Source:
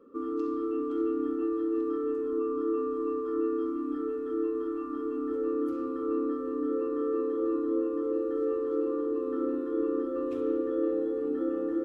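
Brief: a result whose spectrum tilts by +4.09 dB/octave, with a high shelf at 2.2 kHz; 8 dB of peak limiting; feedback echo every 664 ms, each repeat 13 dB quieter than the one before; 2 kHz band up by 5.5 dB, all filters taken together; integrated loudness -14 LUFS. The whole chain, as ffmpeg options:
-af "equalizer=f=2000:t=o:g=5,highshelf=f=2200:g=4.5,alimiter=level_in=1.26:limit=0.0631:level=0:latency=1,volume=0.794,aecho=1:1:664|1328|1992:0.224|0.0493|0.0108,volume=9.44"

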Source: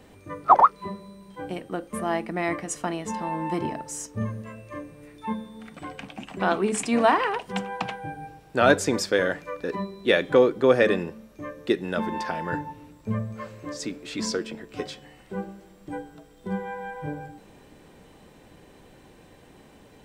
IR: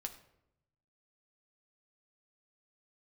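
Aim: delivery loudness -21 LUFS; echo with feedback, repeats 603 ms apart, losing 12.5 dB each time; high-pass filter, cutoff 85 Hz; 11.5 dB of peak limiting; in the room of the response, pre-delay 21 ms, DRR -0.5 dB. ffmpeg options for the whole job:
-filter_complex "[0:a]highpass=85,alimiter=limit=0.178:level=0:latency=1,aecho=1:1:603|1206|1809:0.237|0.0569|0.0137,asplit=2[s0][s1];[1:a]atrim=start_sample=2205,adelay=21[s2];[s1][s2]afir=irnorm=-1:irlink=0,volume=1.41[s3];[s0][s3]amix=inputs=2:normalize=0,volume=1.88"

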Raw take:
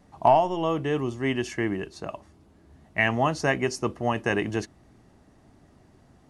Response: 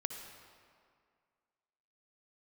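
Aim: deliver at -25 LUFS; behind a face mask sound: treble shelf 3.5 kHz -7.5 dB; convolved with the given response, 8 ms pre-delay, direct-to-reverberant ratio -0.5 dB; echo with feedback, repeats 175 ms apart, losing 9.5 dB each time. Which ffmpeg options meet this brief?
-filter_complex "[0:a]aecho=1:1:175|350|525|700:0.335|0.111|0.0365|0.012,asplit=2[s0][s1];[1:a]atrim=start_sample=2205,adelay=8[s2];[s1][s2]afir=irnorm=-1:irlink=0,volume=1[s3];[s0][s3]amix=inputs=2:normalize=0,highshelf=f=3500:g=-7.5,volume=0.75"

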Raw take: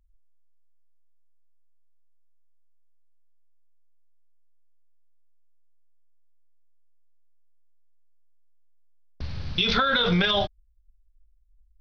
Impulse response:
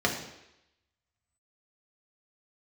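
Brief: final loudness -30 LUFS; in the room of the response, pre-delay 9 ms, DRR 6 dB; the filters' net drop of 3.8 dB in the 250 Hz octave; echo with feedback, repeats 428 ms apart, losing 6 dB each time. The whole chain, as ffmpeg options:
-filter_complex "[0:a]equalizer=f=250:t=o:g=-6.5,aecho=1:1:428|856|1284|1712|2140|2568:0.501|0.251|0.125|0.0626|0.0313|0.0157,asplit=2[s0][s1];[1:a]atrim=start_sample=2205,adelay=9[s2];[s1][s2]afir=irnorm=-1:irlink=0,volume=0.126[s3];[s0][s3]amix=inputs=2:normalize=0,volume=0.447"

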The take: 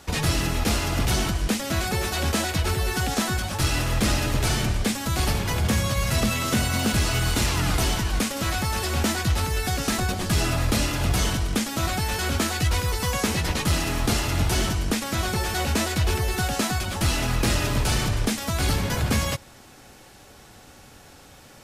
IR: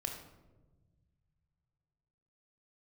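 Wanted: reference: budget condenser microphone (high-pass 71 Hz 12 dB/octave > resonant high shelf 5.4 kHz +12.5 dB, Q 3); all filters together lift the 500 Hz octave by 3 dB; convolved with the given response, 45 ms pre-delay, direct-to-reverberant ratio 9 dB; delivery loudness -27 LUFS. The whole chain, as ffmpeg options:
-filter_complex "[0:a]equalizer=f=500:t=o:g=4,asplit=2[s0][s1];[1:a]atrim=start_sample=2205,adelay=45[s2];[s1][s2]afir=irnorm=-1:irlink=0,volume=0.355[s3];[s0][s3]amix=inputs=2:normalize=0,highpass=71,highshelf=f=5400:t=q:w=3:g=12.5,volume=0.251"

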